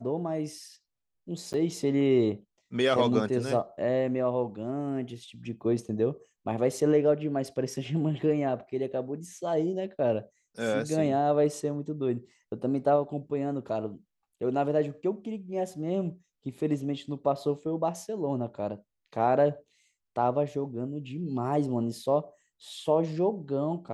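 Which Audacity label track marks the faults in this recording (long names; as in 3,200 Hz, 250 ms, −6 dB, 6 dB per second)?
1.530000	1.540000	drop-out 9.7 ms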